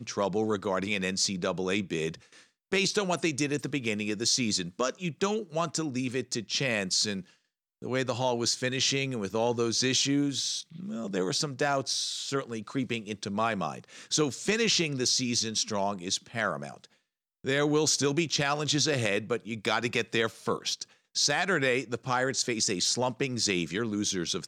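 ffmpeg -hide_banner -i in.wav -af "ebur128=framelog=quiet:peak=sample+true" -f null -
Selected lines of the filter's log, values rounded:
Integrated loudness:
  I:         -28.5 LUFS
  Threshold: -38.8 LUFS
Loudness range:
  LRA:         2.7 LU
  Threshold: -48.8 LUFS
  LRA low:   -30.4 LUFS
  LRA high:  -27.7 LUFS
Sample peak:
  Peak:      -12.8 dBFS
True peak:
  Peak:      -12.7 dBFS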